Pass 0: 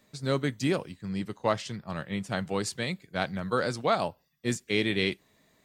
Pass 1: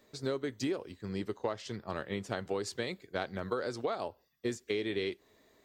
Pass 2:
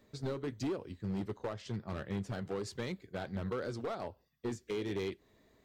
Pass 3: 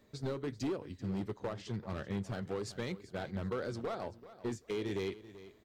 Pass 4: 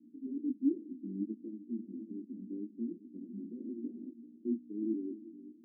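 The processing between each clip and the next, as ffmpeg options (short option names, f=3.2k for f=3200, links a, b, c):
-af "equalizer=f=160:t=o:w=0.67:g=-11,equalizer=f=400:t=o:w=0.67:g=7,equalizer=f=2.5k:t=o:w=0.67:g=-3,equalizer=f=10k:t=o:w=0.67:g=-8,acompressor=threshold=-30dB:ratio=12"
-af "bass=f=250:g=9,treble=f=4k:g=-3,asoftclip=type=hard:threshold=-28.5dB,flanger=delay=0:depth=6.1:regen=-72:speed=1.4:shape=sinusoidal,volume=1dB"
-af "aecho=1:1:386|772:0.158|0.0333"
-af "aeval=exprs='val(0)+0.00282*(sin(2*PI*60*n/s)+sin(2*PI*2*60*n/s)/2+sin(2*PI*3*60*n/s)/3+sin(2*PI*4*60*n/s)/4+sin(2*PI*5*60*n/s)/5)':c=same,flanger=delay=17.5:depth=3.4:speed=1.4,asuperpass=centerf=270:order=8:qfactor=2.3,volume=10.5dB"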